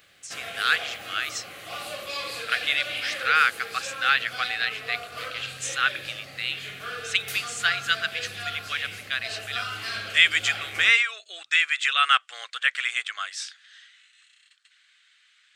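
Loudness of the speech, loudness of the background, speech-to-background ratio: −24.5 LKFS, −34.0 LKFS, 9.5 dB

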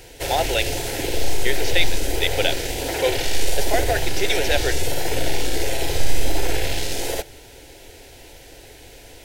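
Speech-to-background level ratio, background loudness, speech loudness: 0.0 dB, −25.0 LKFS, −25.0 LKFS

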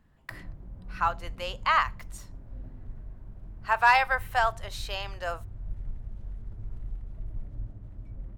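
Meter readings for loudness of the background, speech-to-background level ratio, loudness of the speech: −44.0 LKFS, 17.0 dB, −27.0 LKFS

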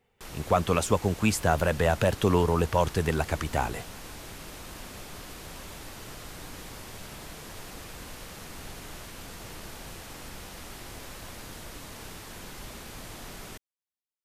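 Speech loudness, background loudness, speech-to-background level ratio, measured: −26.0 LKFS, −42.0 LKFS, 16.0 dB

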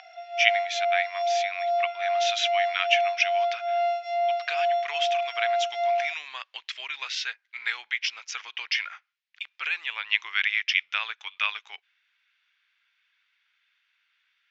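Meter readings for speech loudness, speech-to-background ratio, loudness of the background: −28.5 LKFS, −1.5 dB, −27.0 LKFS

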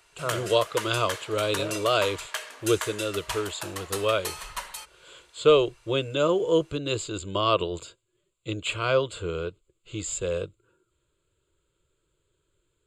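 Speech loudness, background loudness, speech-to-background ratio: −27.0 LKFS, −35.0 LKFS, 8.0 dB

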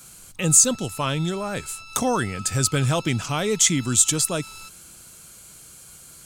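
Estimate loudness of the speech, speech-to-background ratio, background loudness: −21.0 LKFS, 19.0 dB, −40.0 LKFS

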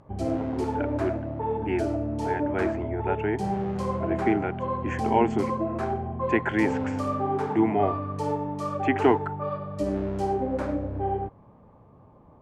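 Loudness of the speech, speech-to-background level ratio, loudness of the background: −28.5 LKFS, 1.0 dB, −29.5 LKFS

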